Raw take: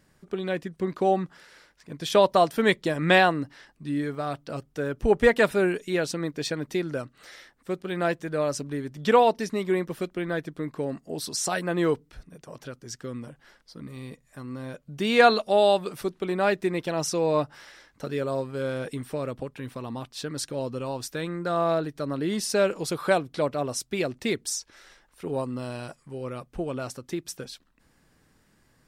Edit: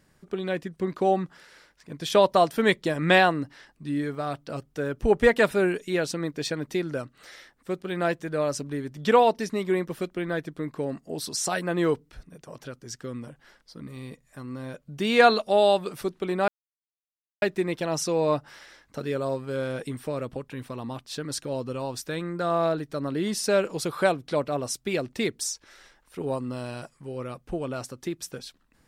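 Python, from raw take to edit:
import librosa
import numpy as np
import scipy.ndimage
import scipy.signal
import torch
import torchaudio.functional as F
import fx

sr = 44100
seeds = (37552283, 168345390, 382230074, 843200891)

y = fx.edit(x, sr, fx.insert_silence(at_s=16.48, length_s=0.94), tone=tone)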